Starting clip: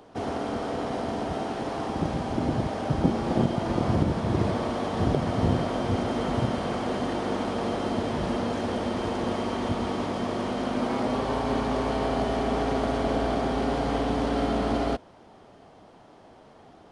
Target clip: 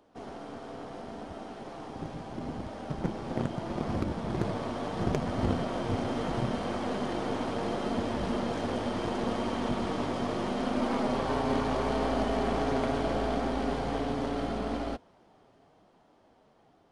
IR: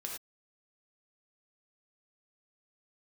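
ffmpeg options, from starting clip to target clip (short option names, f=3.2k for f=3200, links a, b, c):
-af "aeval=exprs='0.335*(cos(1*acos(clip(val(0)/0.335,-1,1)))-cos(1*PI/2))+0.119*(cos(4*acos(clip(val(0)/0.335,-1,1)))-cos(4*PI/2))+0.0841*(cos(6*acos(clip(val(0)/0.335,-1,1)))-cos(6*PI/2))':c=same,flanger=delay=3.1:depth=4.8:regen=-53:speed=0.74:shape=triangular,dynaudnorm=f=760:g=11:m=10.5dB,volume=-8dB"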